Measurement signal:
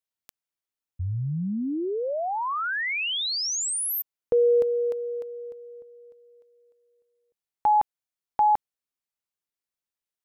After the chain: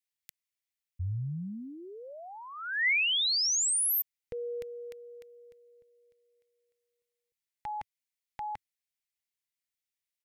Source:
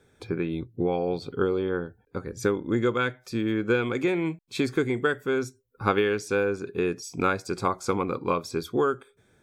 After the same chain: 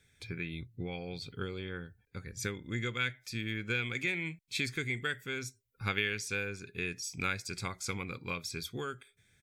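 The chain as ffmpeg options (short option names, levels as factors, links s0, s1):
-af "firequalizer=gain_entry='entry(100,0);entry(310,-13);entry(1100,-13);entry(2000,7);entry(2800,4)':delay=0.05:min_phase=1,volume=0.631"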